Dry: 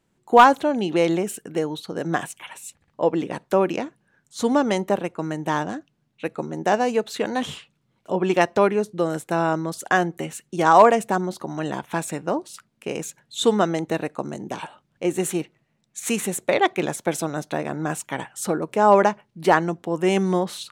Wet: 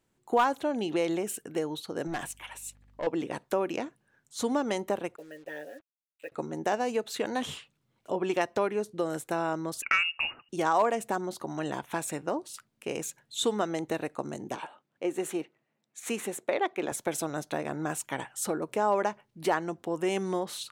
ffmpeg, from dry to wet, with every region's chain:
ffmpeg -i in.wav -filter_complex "[0:a]asettb=1/sr,asplit=3[link_01][link_02][link_03];[link_01]atrim=end=2.074[link_04];[link_02]atrim=start=2.07:end=3.07,asetpts=PTS-STARTPTS,afade=type=in:duration=0.004:curve=qsin,afade=type=out:start_time=0.996:duration=0.004:curve=qsin,aeval=exprs='(tanh(14.1*val(0)+0.1)-tanh(0.1))/14.1':channel_layout=same,aeval=exprs='val(0)+0.002*(sin(2*PI*50*n/s)+sin(2*PI*2*50*n/s)/2+sin(2*PI*3*50*n/s)/3+sin(2*PI*4*50*n/s)/4+sin(2*PI*5*50*n/s)/5)':channel_layout=same[link_05];[link_03]atrim=start=3.066[link_06];[link_04][link_05]acrossfade=duration=0.004:curve1=hsin:curve2=qsin[link_07];[link_07][link_06]acrossfade=duration=0.004:curve1=qsin:curve2=hsin,asettb=1/sr,asplit=3[link_08][link_09][link_10];[link_08]atrim=end=5.164[link_11];[link_09]atrim=start=5.16:end=6.32,asetpts=PTS-STARTPTS,afade=type=in:duration=0.004:curve=qsin,afade=type=out:start_time=1.156:duration=0.004:curve=qsin,asplit=3[link_12][link_13][link_14];[link_12]bandpass=frequency=530:width_type=q:width=8,volume=0dB[link_15];[link_13]bandpass=frequency=1840:width_type=q:width=8,volume=-6dB[link_16];[link_14]bandpass=frequency=2480:width_type=q:width=8,volume=-9dB[link_17];[link_15][link_16][link_17]amix=inputs=3:normalize=0,aecho=1:1:7.1:0.74,atrim=end_sample=51156,acrusher=bits=8:mix=0:aa=0.5[link_18];[link_10]atrim=start=6.316[link_19];[link_11][link_18]acrossfade=duration=0.004:curve1=hsin:curve2=qsin[link_20];[link_20][link_19]acrossfade=duration=0.004:curve1=qsin:curve2=hsin,asettb=1/sr,asplit=3[link_21][link_22][link_23];[link_21]atrim=end=9.824[link_24];[link_22]atrim=start=9.82:end=10.49,asetpts=PTS-STARTPTS,afade=type=in:duration=0.004:curve=qsin,afade=type=out:start_time=0.666:duration=0.004:curve=qsin,lowpass=frequency=2600:width_type=q:width=0.5098,lowpass=frequency=2600:width_type=q:width=0.6013,lowpass=frequency=2600:width_type=q:width=0.9,lowpass=frequency=2600:width_type=q:width=2.563,afreqshift=-3000,acontrast=28[link_25];[link_23]atrim=start=10.486[link_26];[link_24][link_25]acrossfade=duration=0.004:curve1=hsin:curve2=qsin[link_27];[link_27][link_26]acrossfade=duration=0.004:curve1=qsin:curve2=hsin,asettb=1/sr,asplit=3[link_28][link_29][link_30];[link_28]atrim=end=14.554[link_31];[link_29]atrim=start=14.55:end=16.92,asetpts=PTS-STARTPTS,afade=type=in:duration=0.004:curve=qsin,afade=type=out:start_time=2.366:duration=0.004:curve=qsin,highpass=220,highshelf=frequency=3900:gain=-10[link_32];[link_30]atrim=start=16.916[link_33];[link_31][link_32]acrossfade=duration=0.004:curve1=hsin:curve2=qsin[link_34];[link_34][link_33]acrossfade=duration=0.004:curve1=qsin:curve2=hsin,highshelf=frequency=8900:gain=5,acompressor=threshold=-22dB:ratio=2,equalizer=frequency=180:width_type=o:width=0.39:gain=-6.5,volume=-4.5dB" out.wav

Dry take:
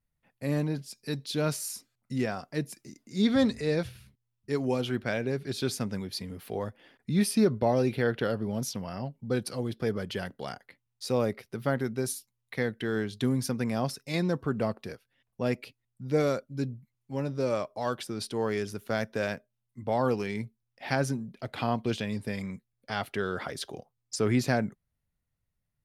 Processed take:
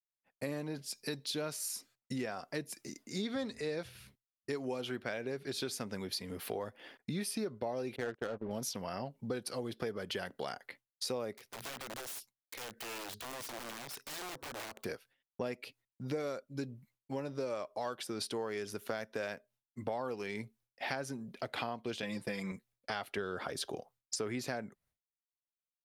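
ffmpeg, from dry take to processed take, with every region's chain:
ffmpeg -i in.wav -filter_complex "[0:a]asettb=1/sr,asplit=3[link_01][link_02][link_03];[link_01]atrim=end=7.964[link_04];[link_02]atrim=start=7.96:end=8.51,asetpts=PTS-STARTPTS,afade=type=in:duration=0.004:curve=qsin,afade=type=out:start_time=0.546:duration=0.004:curve=qsin,agate=range=-17dB:threshold=-34dB:ratio=16:release=100:detection=peak,tremolo=f=220:d=0.4,adynamicsmooth=sensitivity=8:basefreq=870[link_05];[link_03]atrim=start=8.506[link_06];[link_04][link_05]acrossfade=duration=0.004:curve1=hsin:curve2=qsin[link_07];[link_07][link_06]acrossfade=duration=0.004:curve1=qsin:curve2=hsin,asettb=1/sr,asplit=3[link_08][link_09][link_10];[link_08]atrim=end=11.364[link_11];[link_09]atrim=start=11.36:end=14.85,asetpts=PTS-STARTPTS,afade=type=in:duration=0.004:curve=qsin,afade=type=out:start_time=3.486:duration=0.004:curve=qsin,acompressor=threshold=-43dB:ratio=5:attack=3.2:release=140:knee=1:detection=peak,aeval=exprs='(mod(141*val(0)+1,2)-1)/141':channel_layout=same[link_12];[link_10]atrim=start=14.846[link_13];[link_11][link_12]acrossfade=duration=0.004:curve1=hsin:curve2=qsin[link_14];[link_14][link_13]acrossfade=duration=0.004:curve1=qsin:curve2=hsin,asettb=1/sr,asplit=3[link_15][link_16][link_17];[link_15]atrim=end=22.024[link_18];[link_16]atrim=start=22.02:end=22.52,asetpts=PTS-STARTPTS,afade=type=in:duration=0.004:curve=qsin,afade=type=out:start_time=0.496:duration=0.004:curve=qsin,aecho=1:1:5.9:0.96,atrim=end_sample=22050,agate=range=-33dB:threshold=-39dB:ratio=3:release=100:detection=peak[link_19];[link_17]atrim=start=22.516[link_20];[link_18][link_19]acrossfade=duration=0.004:curve1=hsin:curve2=qsin[link_21];[link_21][link_20]acrossfade=duration=0.004:curve1=qsin:curve2=hsin,asettb=1/sr,asplit=3[link_22][link_23][link_24];[link_22]atrim=end=23.174[link_25];[link_23]atrim=start=23.17:end=23.77,asetpts=PTS-STARTPTS,afade=type=in:duration=0.004:curve=qsin,afade=type=out:start_time=0.596:duration=0.004:curve=qsin,lowshelf=frequency=320:gain=6.5,bandreject=frequency=2000:width=11[link_26];[link_24]atrim=start=23.766[link_27];[link_25][link_26]acrossfade=duration=0.004:curve1=hsin:curve2=qsin[link_28];[link_28][link_27]acrossfade=duration=0.004:curve1=qsin:curve2=hsin,agate=range=-33dB:threshold=-57dB:ratio=3:detection=peak,bass=frequency=250:gain=-10,treble=frequency=4000:gain=0,acompressor=threshold=-41dB:ratio=6,volume=5.5dB" out.wav

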